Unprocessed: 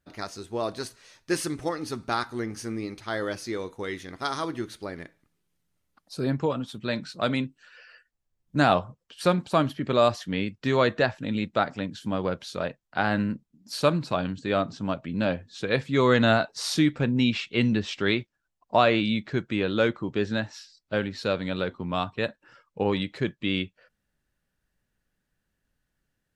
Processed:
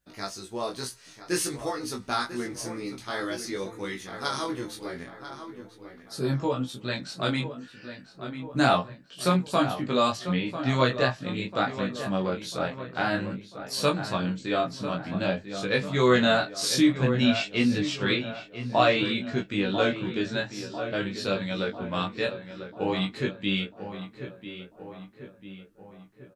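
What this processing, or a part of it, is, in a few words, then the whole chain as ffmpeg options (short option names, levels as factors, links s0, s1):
double-tracked vocal: -filter_complex "[0:a]asettb=1/sr,asplit=3[s0][s1][s2];[s0]atrim=end=10.174[s3];[s1]atrim=start=10.17:end=10.69,asetpts=PTS-STARTPTS,afade=t=in:d=0.004:c=qsin,afade=t=out:st=0.516:d=0.004:c=qsin,lowpass=4200[s4];[s2]atrim=start=10.686[s5];[s3][s4]acrossfade=d=0.004:c1=hsin:c2=qsin[s6];[s6][s5]acrossfade=d=0.004:c1=qsin:c2=hsin,highshelf=f=4400:g=8.5,asplit=2[s7][s8];[s8]adelay=16,volume=0.596[s9];[s7][s9]amix=inputs=2:normalize=0,asplit=2[s10][s11];[s11]adelay=995,lowpass=f=2500:p=1,volume=0.316,asplit=2[s12][s13];[s13]adelay=995,lowpass=f=2500:p=1,volume=0.54,asplit=2[s14][s15];[s15]adelay=995,lowpass=f=2500:p=1,volume=0.54,asplit=2[s16][s17];[s17]adelay=995,lowpass=f=2500:p=1,volume=0.54,asplit=2[s18][s19];[s19]adelay=995,lowpass=f=2500:p=1,volume=0.54,asplit=2[s20][s21];[s21]adelay=995,lowpass=f=2500:p=1,volume=0.54[s22];[s10][s12][s14][s16][s18][s20][s22]amix=inputs=7:normalize=0,flanger=delay=20:depth=3.4:speed=0.51"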